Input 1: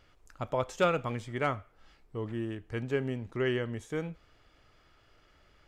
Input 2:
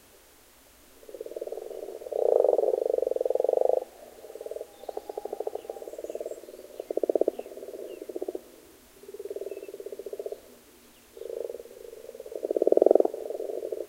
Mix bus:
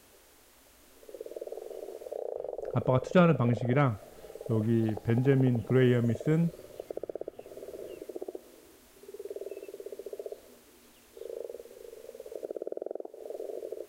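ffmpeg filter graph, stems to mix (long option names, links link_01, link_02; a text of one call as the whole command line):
ffmpeg -i stem1.wav -i stem2.wav -filter_complex "[0:a]equalizer=frequency=170:width=0.75:gain=13,agate=range=-33dB:threshold=-55dB:ratio=3:detection=peak,highshelf=frequency=7200:gain=-11.5,adelay=2350,volume=0dB[link_01];[1:a]acompressor=threshold=-30dB:ratio=6,volume=-3dB[link_02];[link_01][link_02]amix=inputs=2:normalize=0" out.wav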